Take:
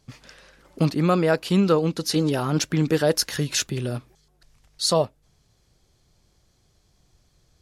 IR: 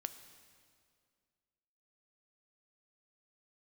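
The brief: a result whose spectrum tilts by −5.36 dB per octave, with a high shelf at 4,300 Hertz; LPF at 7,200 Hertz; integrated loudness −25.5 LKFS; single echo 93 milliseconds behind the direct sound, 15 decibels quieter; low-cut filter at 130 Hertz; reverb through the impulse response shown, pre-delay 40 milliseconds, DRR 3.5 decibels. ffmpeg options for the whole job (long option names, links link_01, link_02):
-filter_complex "[0:a]highpass=130,lowpass=7200,highshelf=frequency=4300:gain=-5,aecho=1:1:93:0.178,asplit=2[link_01][link_02];[1:a]atrim=start_sample=2205,adelay=40[link_03];[link_02][link_03]afir=irnorm=-1:irlink=0,volume=-1dB[link_04];[link_01][link_04]amix=inputs=2:normalize=0,volume=-3.5dB"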